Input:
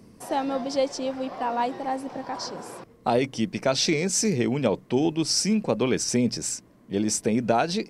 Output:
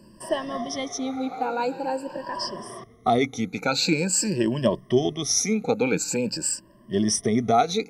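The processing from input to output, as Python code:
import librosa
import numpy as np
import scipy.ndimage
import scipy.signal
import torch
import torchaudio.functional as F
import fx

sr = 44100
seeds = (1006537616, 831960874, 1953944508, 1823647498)

y = fx.spec_ripple(x, sr, per_octave=1.3, drift_hz=0.46, depth_db=21)
y = F.gain(torch.from_numpy(y), -3.0).numpy()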